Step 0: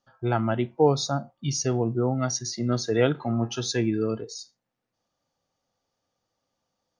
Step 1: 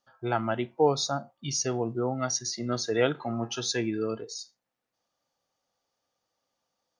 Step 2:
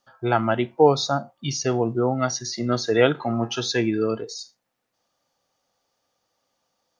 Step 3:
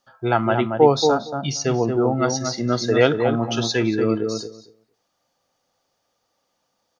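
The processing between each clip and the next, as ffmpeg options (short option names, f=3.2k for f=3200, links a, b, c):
-af "lowshelf=f=280:g=-10"
-filter_complex "[0:a]acrossover=split=4900[a][b];[b]acompressor=threshold=-46dB:ratio=4:attack=1:release=60[c];[a][c]amix=inputs=2:normalize=0,volume=7dB"
-filter_complex "[0:a]asplit=2[a][b];[b]adelay=230,lowpass=f=1.1k:p=1,volume=-4dB,asplit=2[c][d];[d]adelay=230,lowpass=f=1.1k:p=1,volume=0.15,asplit=2[e][f];[f]adelay=230,lowpass=f=1.1k:p=1,volume=0.15[g];[a][c][e][g]amix=inputs=4:normalize=0,volume=1.5dB"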